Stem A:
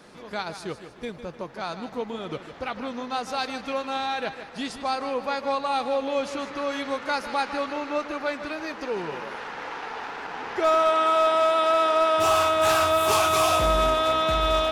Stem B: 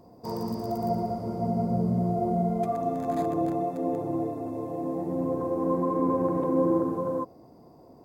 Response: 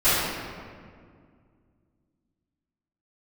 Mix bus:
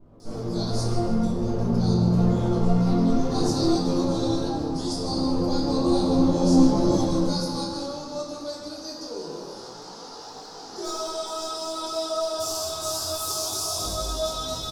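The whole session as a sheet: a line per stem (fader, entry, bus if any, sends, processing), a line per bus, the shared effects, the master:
-5.5 dB, 0.20 s, send -15.5 dB, resonant high shelf 3600 Hz +12 dB, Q 3; limiter -12.5 dBFS, peak gain reduction 11 dB
-0.5 dB, 0.00 s, send -10 dB, Chebyshev low-pass 950 Hz, order 8; running maximum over 33 samples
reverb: on, RT60 2.1 s, pre-delay 3 ms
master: bell 1900 Hz -13 dB 1.3 oct; detuned doubles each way 10 cents

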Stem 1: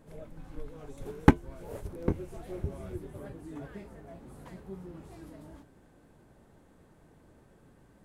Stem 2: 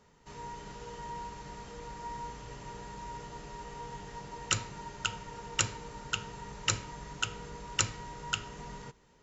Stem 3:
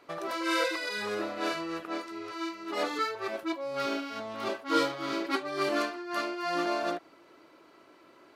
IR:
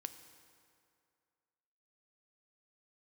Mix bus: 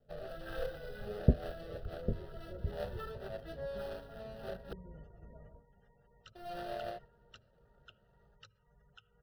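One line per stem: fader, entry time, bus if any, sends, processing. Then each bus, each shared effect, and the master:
-3.0 dB, 0.00 s, no send, octaver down 2 oct, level -6 dB; steep low-pass 670 Hz 96 dB/oct; bell 250 Hz +7 dB 0.36 oct
-10.5 dB, 1.75 s, send -15.5 dB, spectral gate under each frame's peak -20 dB strong; compressor 5:1, threshold -40 dBFS, peak gain reduction 16 dB
-3.0 dB, 0.00 s, muted 4.73–6.35, no send, median filter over 41 samples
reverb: on, RT60 2.3 s, pre-delay 3 ms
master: gate -48 dBFS, range -8 dB; fixed phaser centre 1500 Hz, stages 8

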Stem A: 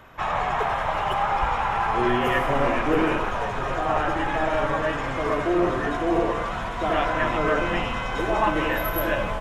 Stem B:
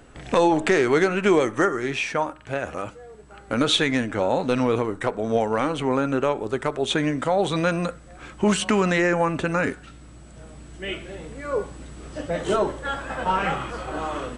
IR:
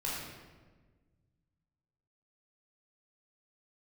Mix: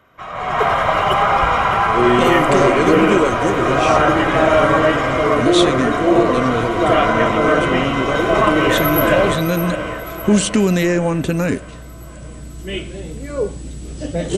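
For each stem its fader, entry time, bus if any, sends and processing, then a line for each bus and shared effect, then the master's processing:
-5.0 dB, 0.00 s, no send, echo send -11 dB, notch comb 870 Hz; AGC gain up to 7.5 dB
-1.0 dB, 1.85 s, no send, no echo send, bell 1200 Hz -14.5 dB 2.2 oct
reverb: off
echo: feedback echo 0.609 s, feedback 54%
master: AGC gain up to 11.5 dB

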